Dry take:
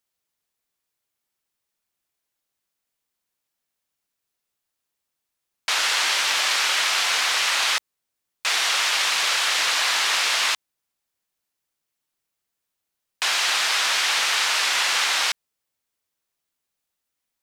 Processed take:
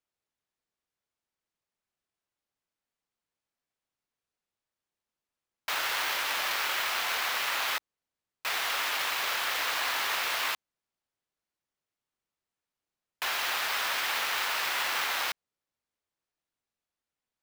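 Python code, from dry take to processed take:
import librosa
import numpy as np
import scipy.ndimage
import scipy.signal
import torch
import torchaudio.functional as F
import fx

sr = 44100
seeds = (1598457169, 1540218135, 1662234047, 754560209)

y = fx.high_shelf(x, sr, hz=2700.0, db=-10.0)
y = fx.sample_hold(y, sr, seeds[0], rate_hz=17000.0, jitter_pct=0)
y = y * librosa.db_to_amplitude(-4.0)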